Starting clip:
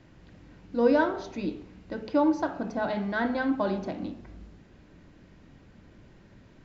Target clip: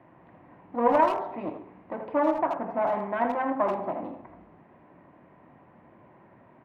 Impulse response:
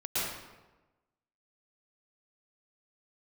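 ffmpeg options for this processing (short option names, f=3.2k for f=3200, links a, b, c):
-filter_complex "[0:a]aeval=exprs='clip(val(0),-1,0.0168)':c=same,highpass=190,equalizer=f=200:t=q:w=4:g=-5,equalizer=f=290:t=q:w=4:g=-4,equalizer=f=440:t=q:w=4:g=-4,equalizer=f=700:t=q:w=4:g=6,equalizer=f=1k:t=q:w=4:g=8,equalizer=f=1.5k:t=q:w=4:g=-7,lowpass=f=2k:w=0.5412,lowpass=f=2k:w=1.3066,asplit=2[a][b];[b]adelay=80,highpass=300,lowpass=3.4k,asoftclip=type=hard:threshold=-23dB,volume=-7dB[c];[a][c]amix=inputs=2:normalize=0,volume=3.5dB"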